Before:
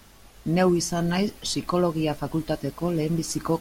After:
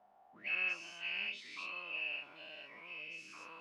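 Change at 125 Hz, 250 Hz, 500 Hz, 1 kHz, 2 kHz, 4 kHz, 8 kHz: under -40 dB, -38.5 dB, -31.5 dB, -22.5 dB, -1.0 dB, -11.0 dB, -28.5 dB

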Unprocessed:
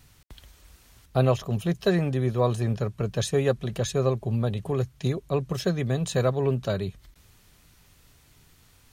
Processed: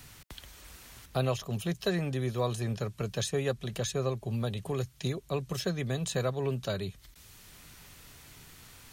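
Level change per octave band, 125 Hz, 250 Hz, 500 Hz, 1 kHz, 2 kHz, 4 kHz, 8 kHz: -7.0, -6.5, -7.0, -6.0, -3.5, -1.5, -1.5 dB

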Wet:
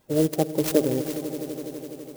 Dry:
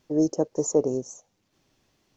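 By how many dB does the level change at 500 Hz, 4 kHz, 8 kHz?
+1.5 dB, +11.0 dB, n/a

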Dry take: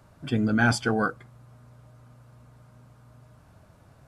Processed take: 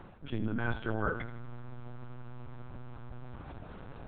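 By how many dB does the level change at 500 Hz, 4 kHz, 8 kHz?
-8.0 dB, -14.5 dB, under -40 dB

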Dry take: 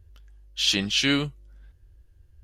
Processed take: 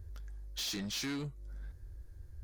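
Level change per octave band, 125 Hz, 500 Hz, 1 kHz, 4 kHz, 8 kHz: -9.0, -14.0, -13.0, -16.0, -10.0 dB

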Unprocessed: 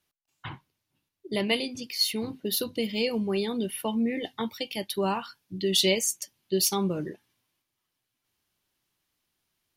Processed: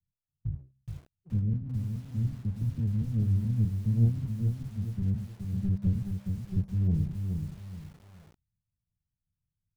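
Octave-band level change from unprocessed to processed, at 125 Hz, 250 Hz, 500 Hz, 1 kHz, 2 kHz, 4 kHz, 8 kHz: +13.5 dB, -3.0 dB, -22.5 dB, under -20 dB, under -20 dB, under -30 dB, under -25 dB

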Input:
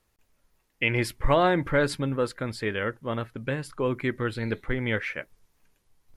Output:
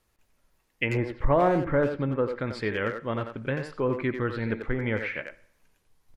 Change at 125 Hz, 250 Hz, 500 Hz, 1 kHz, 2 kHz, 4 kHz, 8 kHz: 0.0 dB, +0.5 dB, +0.5 dB, -1.0 dB, -2.5 dB, -7.0 dB, under -10 dB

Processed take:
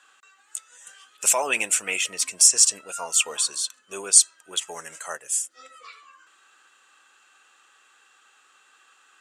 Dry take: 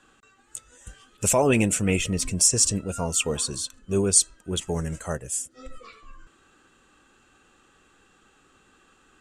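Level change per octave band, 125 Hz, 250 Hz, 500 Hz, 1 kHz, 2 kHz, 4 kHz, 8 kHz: under -25 dB, under -15 dB, -8.5 dB, 0.0 dB, +4.0 dB, +4.0 dB, +4.0 dB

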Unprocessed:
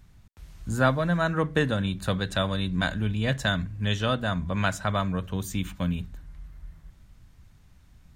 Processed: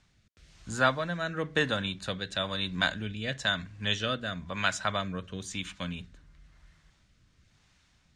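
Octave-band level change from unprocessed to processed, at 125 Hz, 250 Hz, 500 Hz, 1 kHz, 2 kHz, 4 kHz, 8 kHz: -10.5, -8.0, -5.0, -3.0, -0.5, +1.5, -0.5 dB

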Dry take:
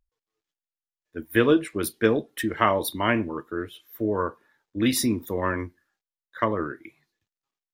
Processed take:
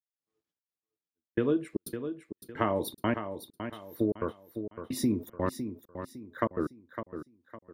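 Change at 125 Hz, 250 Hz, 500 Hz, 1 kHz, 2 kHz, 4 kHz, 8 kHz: -5.5, -6.0, -7.5, -9.0, -13.0, -12.5, -11.5 dB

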